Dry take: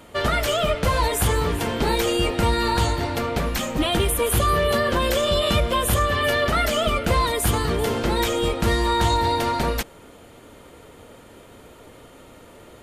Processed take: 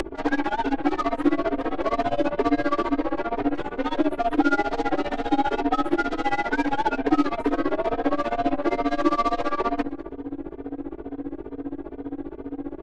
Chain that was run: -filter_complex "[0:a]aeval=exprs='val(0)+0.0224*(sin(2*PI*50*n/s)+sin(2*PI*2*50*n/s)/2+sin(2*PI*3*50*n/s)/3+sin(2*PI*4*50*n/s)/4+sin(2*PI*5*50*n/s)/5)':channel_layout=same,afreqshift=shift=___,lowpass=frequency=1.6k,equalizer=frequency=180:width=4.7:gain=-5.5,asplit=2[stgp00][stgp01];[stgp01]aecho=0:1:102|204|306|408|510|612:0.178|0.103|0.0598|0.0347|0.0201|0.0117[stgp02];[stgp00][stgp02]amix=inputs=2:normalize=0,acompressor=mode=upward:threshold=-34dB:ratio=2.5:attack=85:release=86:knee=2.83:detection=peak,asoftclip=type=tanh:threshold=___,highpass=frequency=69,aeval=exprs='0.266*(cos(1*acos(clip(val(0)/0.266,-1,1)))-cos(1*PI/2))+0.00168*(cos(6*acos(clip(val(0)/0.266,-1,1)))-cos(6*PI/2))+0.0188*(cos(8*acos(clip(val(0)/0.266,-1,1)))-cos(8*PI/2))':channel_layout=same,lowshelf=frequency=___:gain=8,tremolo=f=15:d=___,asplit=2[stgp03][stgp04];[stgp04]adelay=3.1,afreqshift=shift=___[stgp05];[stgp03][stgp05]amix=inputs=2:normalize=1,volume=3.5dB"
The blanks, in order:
230, -11.5dB, 230, 0.96, 2.2